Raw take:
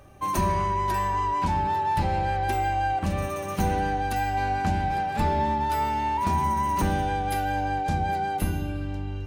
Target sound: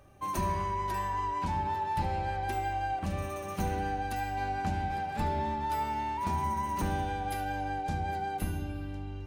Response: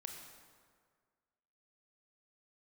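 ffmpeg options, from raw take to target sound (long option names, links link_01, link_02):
-filter_complex "[0:a]asplit=2[link_01][link_02];[1:a]atrim=start_sample=2205,adelay=74[link_03];[link_02][link_03]afir=irnorm=-1:irlink=0,volume=-9dB[link_04];[link_01][link_04]amix=inputs=2:normalize=0,volume=-7dB"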